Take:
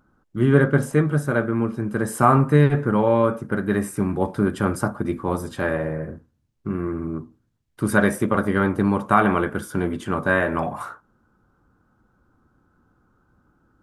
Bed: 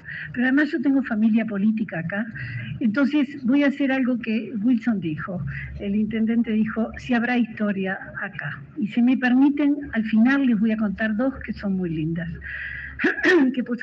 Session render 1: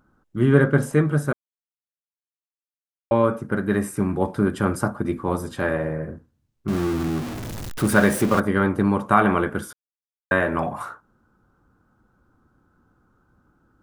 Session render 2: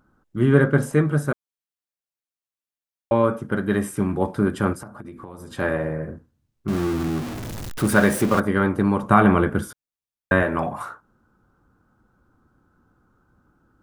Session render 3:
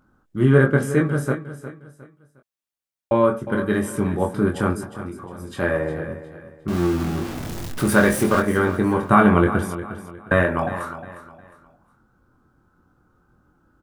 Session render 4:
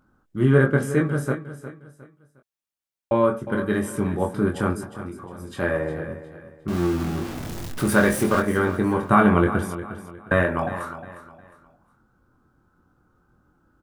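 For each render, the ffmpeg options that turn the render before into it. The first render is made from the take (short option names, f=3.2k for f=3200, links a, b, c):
-filter_complex "[0:a]asettb=1/sr,asplit=3[a][b][c];[a]atrim=end=6.684[d];[b]atrim=start=6.68:end=8.4,asetpts=PTS-STARTPTS,afade=t=in:d=0.004:c=qsin,afade=t=out:st=1.716:d=0.004:c=qsin,aeval=exprs='val(0)+0.5*0.0531*sgn(val(0))':c=same[e];[c]atrim=start=8.396[f];[d][e]acrossfade=d=0.004:c1=hsin:c2=qsin[g];[g][f]acrossfade=d=0.004:c1=qsin:c2=hsin,asplit=5[h][i][j][k][l];[h]atrim=end=1.33,asetpts=PTS-STARTPTS,afade=t=out:st=1.326:d=0.004:c=hsin[m];[i]atrim=start=1.33:end=3.11,asetpts=PTS-STARTPTS,volume=0[n];[j]atrim=start=3.11:end=9.73,asetpts=PTS-STARTPTS,afade=t=in:d=0.004:c=hsin,afade=t=out:st=6.616:d=0.004:c=hsin[o];[k]atrim=start=9.73:end=10.31,asetpts=PTS-STARTPTS,volume=0[p];[l]atrim=start=10.31,asetpts=PTS-STARTPTS,afade=t=in:d=0.004:c=hsin[q];[m][n][o][p][q]concat=n=5:v=0:a=1"
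-filter_complex "[0:a]asettb=1/sr,asplit=3[a][b][c];[a]atrim=end=3.384[d];[b]atrim=start=3.38:end=4.14,asetpts=PTS-STARTPTS,afade=t=in:d=0.004:c=qsin,afade=t=out:st=0.756:d=0.004:c=qsin,equalizer=f=3.2k:w=6.2:g=9.5[e];[c]atrim=start=4.136[f];[d][e]acrossfade=d=0.004:c1=hsin:c2=qsin[g];[g][f]acrossfade=d=0.004:c1=qsin:c2=hsin,asettb=1/sr,asplit=3[h][i][j];[h]atrim=end=4.734[k];[i]atrim=start=4.73:end=5.55,asetpts=PTS-STARTPTS,afade=t=in:d=0.004:c=qsin,afade=t=out:st=0.816:d=0.004:c=qsin,acompressor=threshold=-34dB:ratio=10:attack=3.2:release=140:knee=1:detection=peak[l];[j]atrim=start=5.546[m];[k][l]acrossfade=d=0.004:c1=hsin:c2=qsin[n];[n][m]acrossfade=d=0.004:c1=qsin:c2=hsin,asettb=1/sr,asplit=3[o][p][q];[o]atrim=end=9.034[r];[p]atrim=start=9.03:end=10.43,asetpts=PTS-STARTPTS,afade=t=in:d=0.004:c=qsin,afade=t=out:st=1.396:d=0.004:c=qsin,lowshelf=f=250:g=8.5[s];[q]atrim=start=10.426[t];[r][s]acrossfade=d=0.004:c1=hsin:c2=qsin[u];[u][t]acrossfade=d=0.004:c1=qsin:c2=hsin"
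-filter_complex "[0:a]asplit=2[a][b];[b]adelay=23,volume=-5dB[c];[a][c]amix=inputs=2:normalize=0,aecho=1:1:358|716|1074:0.224|0.0739|0.0244"
-af "volume=-2dB"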